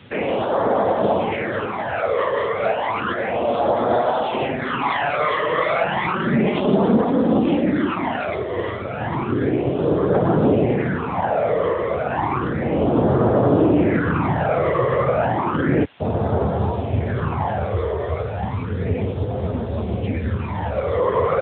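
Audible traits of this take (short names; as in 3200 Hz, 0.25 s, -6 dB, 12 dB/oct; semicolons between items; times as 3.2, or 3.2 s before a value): phasing stages 12, 0.32 Hz, lowest notch 250–2500 Hz; a quantiser's noise floor 8-bit, dither triangular; AMR-NB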